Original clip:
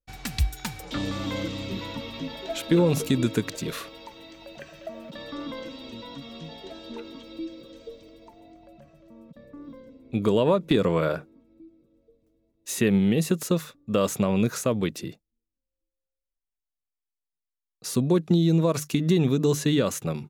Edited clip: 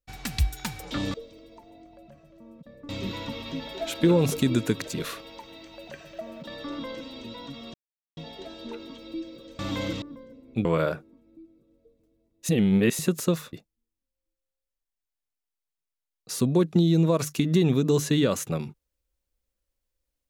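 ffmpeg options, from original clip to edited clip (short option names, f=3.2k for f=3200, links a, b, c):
-filter_complex "[0:a]asplit=10[a][b][c][d][e][f][g][h][i][j];[a]atrim=end=1.142[k];[b]atrim=start=7.838:end=9.592[l];[c]atrim=start=1.568:end=6.42,asetpts=PTS-STARTPTS,afade=t=out:st=4.848:d=0.004:c=hsin,apad=pad_dur=0.43[m];[d]atrim=start=6.42:end=7.842,asetpts=PTS-STARTPTS,afade=t=in:d=0.004:c=hsin[n];[e]atrim=start=1.138:end=1.572[o];[f]atrim=start=9.588:end=10.222[p];[g]atrim=start=10.878:end=12.722[q];[h]atrim=start=12.718:end=13.222,asetpts=PTS-STARTPTS,areverse[r];[i]atrim=start=13.218:end=13.762[s];[j]atrim=start=15.078[t];[k][l]acrossfade=d=0.004:c1=hsin:c2=hsin[u];[m][n]concat=n=2:v=0:a=1[v];[u][v]acrossfade=d=0.004:c1=hsin:c2=hsin[w];[w][o]acrossfade=d=0.004:c1=hsin:c2=hsin[x];[x][p]acrossfade=d=0.004:c1=hsin:c2=hsin[y];[y][q]acrossfade=d=0.004:c1=hsin:c2=hsin[z];[z][r]acrossfade=d=0.004:c1=hsin:c2=hsin[aa];[aa][s]acrossfade=d=0.004:c1=hsin:c2=hsin[ab];[ab][t]acrossfade=d=0.004:c1=hsin:c2=hsin"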